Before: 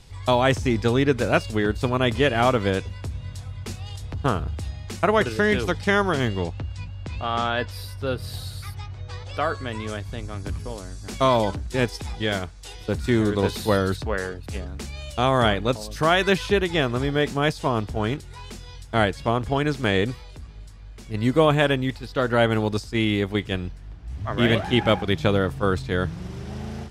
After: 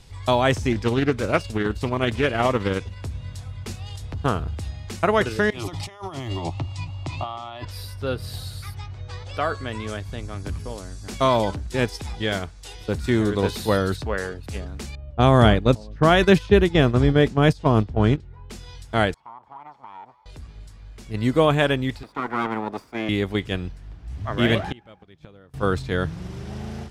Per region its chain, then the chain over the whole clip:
0.72–3 tremolo 19 Hz, depth 34% + Doppler distortion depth 0.29 ms
5.5–7.65 bell 1500 Hz +10 dB 1.1 oct + negative-ratio compressor -27 dBFS + fixed phaser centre 310 Hz, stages 8
14.95–18.5 gate -27 dBFS, range -10 dB + low-pass opened by the level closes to 840 Hz, open at -17.5 dBFS + low shelf 420 Hz +9.5 dB
19.14–20.26 minimum comb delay 0.91 ms + band-pass 900 Hz, Q 5.9 + compressor 3:1, threshold -39 dBFS
22.03–23.09 minimum comb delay 0.86 ms + three-band isolator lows -24 dB, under 210 Hz, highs -15 dB, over 2100 Hz
24.58–25.54 high shelf 6000 Hz -6 dB + flipped gate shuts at -16 dBFS, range -28 dB
whole clip: dry

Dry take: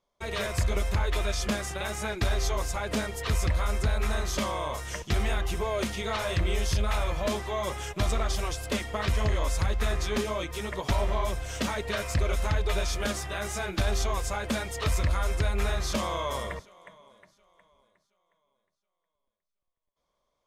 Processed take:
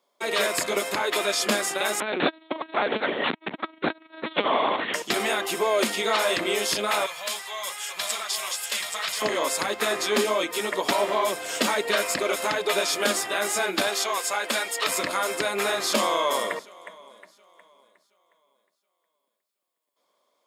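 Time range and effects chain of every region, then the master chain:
2–4.94 zero-crossing step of -33.5 dBFS + LPC vocoder at 8 kHz pitch kept + core saturation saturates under 100 Hz
7.06–9.22 passive tone stack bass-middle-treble 10-0-10 + echo 0.829 s -4.5 dB
13.87–14.89 LPF 1500 Hz 6 dB/oct + tilt +4.5 dB/oct
whole clip: HPF 250 Hz 24 dB/oct; high shelf 4900 Hz +4.5 dB; notch 6000 Hz, Q 7.7; gain +7.5 dB

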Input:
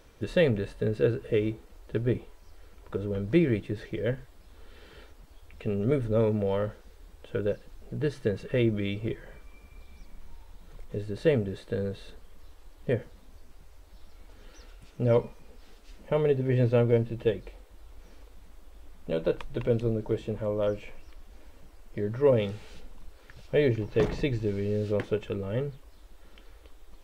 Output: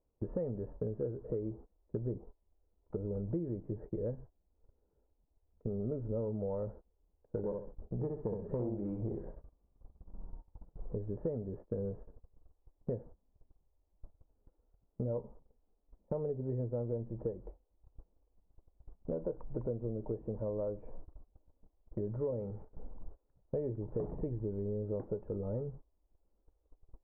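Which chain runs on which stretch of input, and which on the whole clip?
1.96–5.74 air absorption 280 m + notch 1100 Hz, Q 22
7.37–10.95 self-modulated delay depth 0.29 ms + darkening echo 64 ms, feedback 26%, low-pass 4600 Hz, level -4 dB
whole clip: inverse Chebyshev low-pass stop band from 4000 Hz, stop band 70 dB; gate -42 dBFS, range -24 dB; compressor 6:1, threshold -34 dBFS

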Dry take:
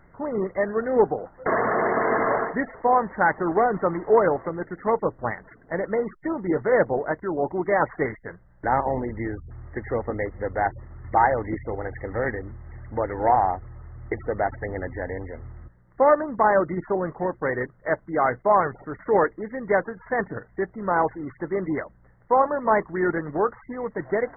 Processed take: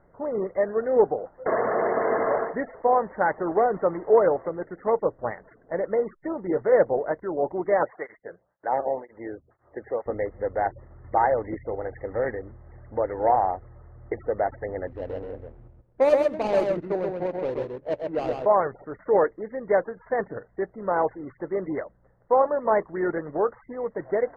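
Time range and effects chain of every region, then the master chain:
7.83–10.06 low-pass opened by the level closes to 1600 Hz, open at -20.5 dBFS + tape flanging out of phase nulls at 2 Hz, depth 1.1 ms
14.87–18.46 median filter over 41 samples + echo 0.131 s -3.5 dB
whole clip: low-pass opened by the level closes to 1500 Hz, open at -16 dBFS; bell 540 Hz +9 dB 1.2 oct; gain -7 dB

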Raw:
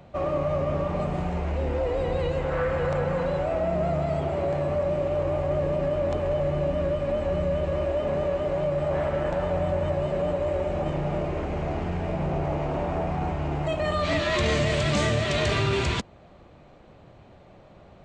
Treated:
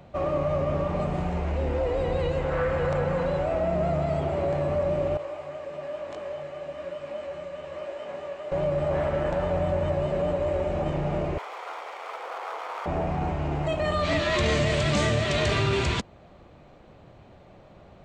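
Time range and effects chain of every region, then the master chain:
5.17–8.52 HPF 950 Hz 6 dB/oct + detuned doubles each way 37 cents
11.38–12.86 minimum comb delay 0.9 ms + elliptic high-pass 480 Hz, stop band 80 dB
whole clip: dry

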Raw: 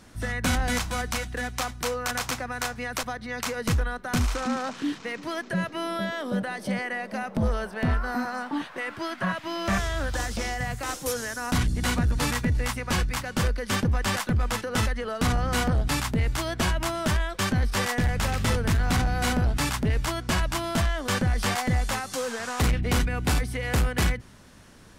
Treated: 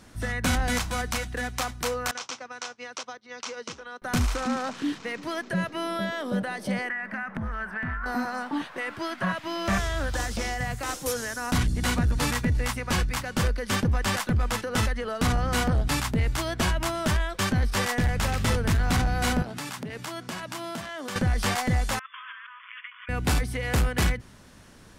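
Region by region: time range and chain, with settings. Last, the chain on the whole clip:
2.11–4.02 expander -29 dBFS + compressor 3:1, threshold -31 dBFS + speaker cabinet 340–7000 Hz, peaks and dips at 710 Hz -4 dB, 1800 Hz -6 dB, 3100 Hz +3 dB, 5800 Hz +6 dB
6.89–8.06 EQ curve 260 Hz 0 dB, 500 Hz -9 dB, 1700 Hz +12 dB, 4000 Hz -11 dB + compressor, threshold -28 dBFS
19.42–21.16 HPF 140 Hz 24 dB/oct + compressor 4:1, threshold -32 dBFS
21.99–23.09 gate -35 dBFS, range -11 dB + brick-wall FIR band-pass 970–3500 Hz + negative-ratio compressor -44 dBFS
whole clip: dry

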